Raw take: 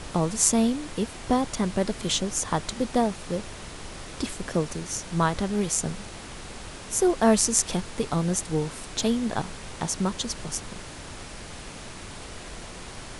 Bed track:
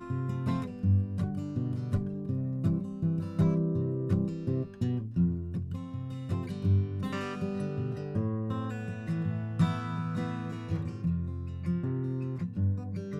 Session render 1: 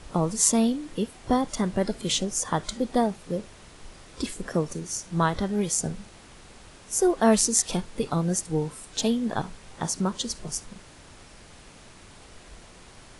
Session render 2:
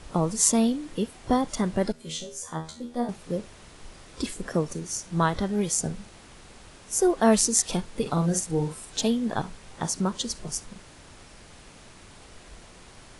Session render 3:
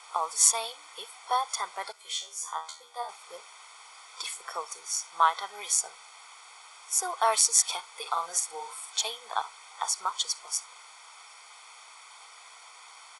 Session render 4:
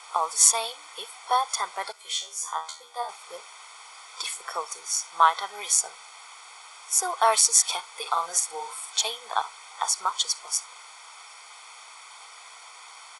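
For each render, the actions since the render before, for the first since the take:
noise print and reduce 9 dB
1.92–3.09 resonator 80 Hz, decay 0.32 s, mix 100%; 8.01–8.99 doubler 47 ms -7 dB
elliptic high-pass 530 Hz, stop band 50 dB; comb 0.9 ms, depth 88%
gain +4 dB; limiter -2 dBFS, peak gain reduction 2.5 dB

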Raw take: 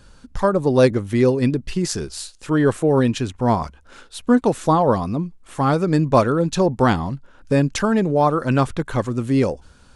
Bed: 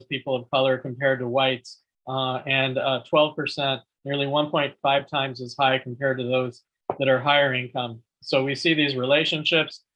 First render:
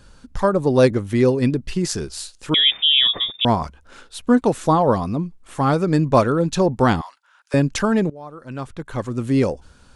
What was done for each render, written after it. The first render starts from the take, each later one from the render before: 2.54–3.45 inverted band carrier 3600 Hz; 7.01–7.54 HPF 970 Hz 24 dB/oct; 8.1–9.28 fade in quadratic, from -21.5 dB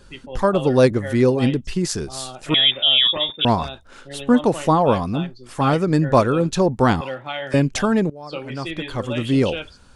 add bed -10 dB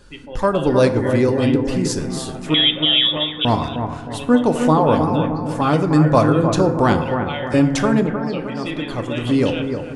analogue delay 0.309 s, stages 4096, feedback 44%, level -7 dB; FDN reverb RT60 1.1 s, low-frequency decay 1.35×, high-frequency decay 0.45×, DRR 8 dB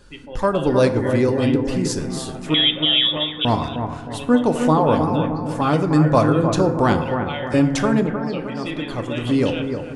gain -1.5 dB

